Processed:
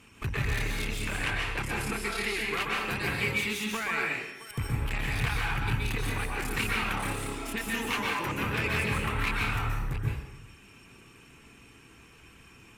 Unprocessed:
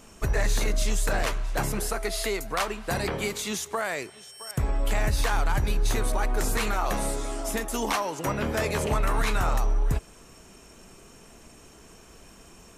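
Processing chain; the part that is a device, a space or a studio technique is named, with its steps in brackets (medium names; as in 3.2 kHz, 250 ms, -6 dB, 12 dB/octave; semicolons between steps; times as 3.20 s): tube preamp driven hard (valve stage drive 27 dB, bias 0.8; bass shelf 130 Hz -8 dB; treble shelf 4.8 kHz -4.5 dB); 0.99–2.61 s: low-pass 11 kHz 12 dB/octave; reverb removal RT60 0.83 s; fifteen-band graphic EQ 100 Hz +10 dB, 630 Hz -12 dB, 2.5 kHz +9 dB, 6.3 kHz -6 dB; plate-style reverb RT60 0.99 s, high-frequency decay 0.75×, pre-delay 115 ms, DRR -2.5 dB; trim +1.5 dB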